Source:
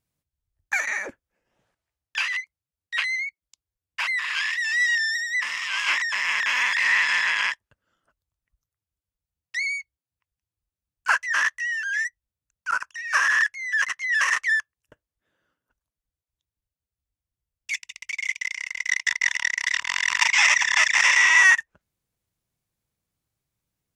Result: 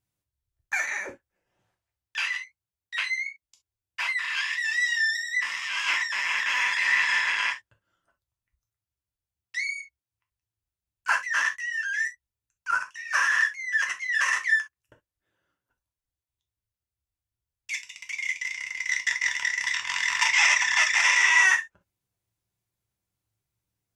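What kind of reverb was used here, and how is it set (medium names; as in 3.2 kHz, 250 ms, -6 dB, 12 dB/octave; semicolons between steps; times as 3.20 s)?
gated-style reverb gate 90 ms falling, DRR 2 dB; trim -4.5 dB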